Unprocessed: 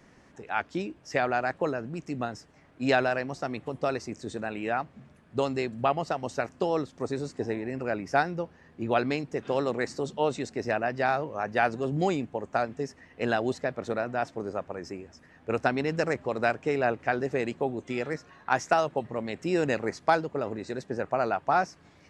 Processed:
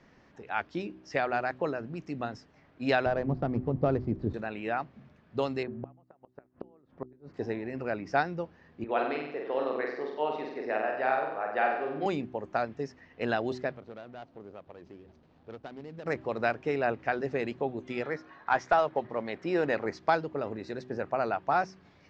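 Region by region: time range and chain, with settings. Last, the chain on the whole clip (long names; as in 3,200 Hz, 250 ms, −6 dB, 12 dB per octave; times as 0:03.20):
0:03.06–0:04.34: running median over 15 samples + spectral tilt −4.5 dB per octave + one half of a high-frequency compander encoder only
0:05.63–0:07.34: low-pass filter 1,500 Hz + gate with flip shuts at −20 dBFS, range −32 dB
0:08.84–0:12.06: high-pass filter 370 Hz + high-frequency loss of the air 300 metres + flutter between parallel walls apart 8 metres, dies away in 0.81 s
0:13.76–0:16.06: running median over 25 samples + downward compressor 2 to 1, threshold −47 dBFS
0:18.03–0:19.86: one scale factor per block 7 bits + notch filter 2,700 Hz, Q 15 + mid-hump overdrive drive 11 dB, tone 1,700 Hz, clips at −8 dBFS
whole clip: low-pass filter 5,400 Hz 24 dB per octave; hum removal 63.16 Hz, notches 6; level −2.5 dB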